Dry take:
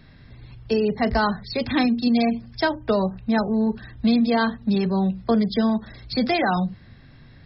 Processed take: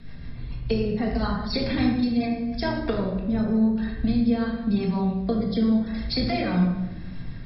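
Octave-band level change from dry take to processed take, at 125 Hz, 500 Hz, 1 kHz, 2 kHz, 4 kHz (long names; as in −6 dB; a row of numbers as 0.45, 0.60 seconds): +2.0, −4.5, −8.0, −7.0, −2.5 decibels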